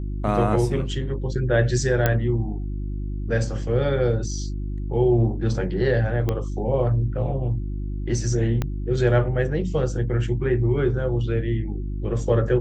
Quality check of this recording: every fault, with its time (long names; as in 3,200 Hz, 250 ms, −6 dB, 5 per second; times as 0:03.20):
mains hum 50 Hz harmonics 7 −28 dBFS
0:02.06: click −6 dBFS
0:06.29: click −12 dBFS
0:08.62: click −12 dBFS